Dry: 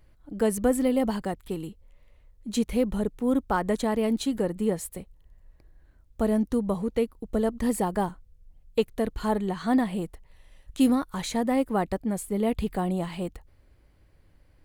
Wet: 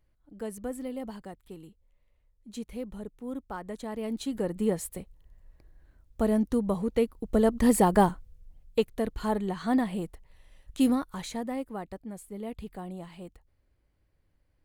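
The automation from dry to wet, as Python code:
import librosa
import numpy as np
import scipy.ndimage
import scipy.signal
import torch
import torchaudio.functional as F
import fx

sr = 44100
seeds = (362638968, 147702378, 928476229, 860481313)

y = fx.gain(x, sr, db=fx.line((3.74, -12.5), (4.62, -1.0), (6.82, -1.0), (8.01, 6.0), (8.91, -2.5), (10.92, -2.5), (11.81, -12.0)))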